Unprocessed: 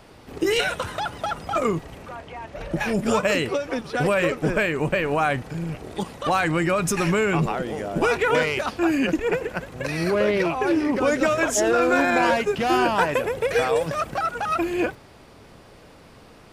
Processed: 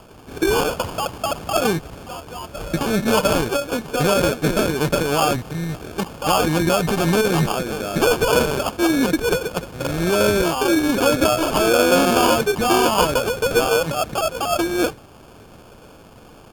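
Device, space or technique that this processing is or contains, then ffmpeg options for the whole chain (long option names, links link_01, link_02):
crushed at another speed: -af "asetrate=55125,aresample=44100,acrusher=samples=18:mix=1:aa=0.000001,asetrate=35280,aresample=44100,volume=3.5dB"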